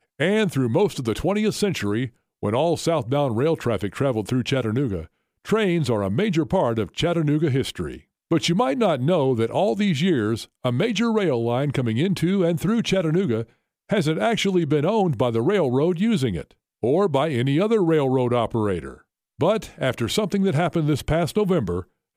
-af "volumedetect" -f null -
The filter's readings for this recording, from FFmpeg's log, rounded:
mean_volume: -21.8 dB
max_volume: -9.3 dB